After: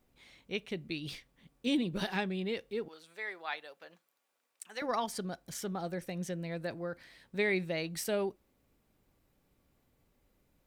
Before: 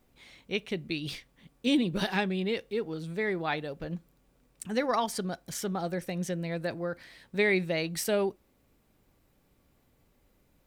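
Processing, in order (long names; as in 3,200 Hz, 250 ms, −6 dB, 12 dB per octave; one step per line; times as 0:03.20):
0:02.88–0:04.82: high-pass filter 830 Hz 12 dB per octave
level −5 dB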